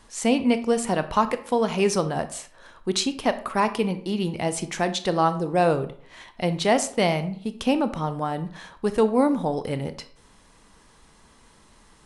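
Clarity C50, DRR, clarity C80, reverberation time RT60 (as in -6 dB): 13.5 dB, 10.5 dB, 17.5 dB, 0.55 s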